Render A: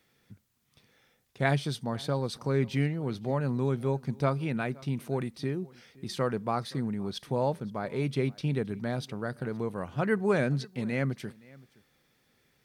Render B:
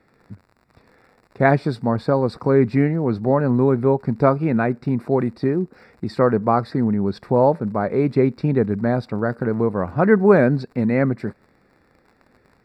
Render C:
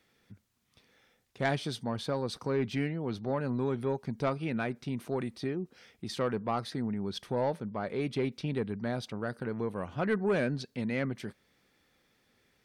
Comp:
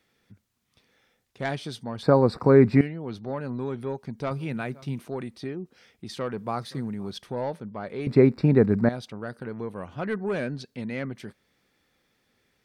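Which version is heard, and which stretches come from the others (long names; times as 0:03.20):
C
0:02.03–0:02.81: punch in from B
0:04.31–0:05.00: punch in from A
0:06.38–0:07.17: punch in from A
0:08.07–0:08.89: punch in from B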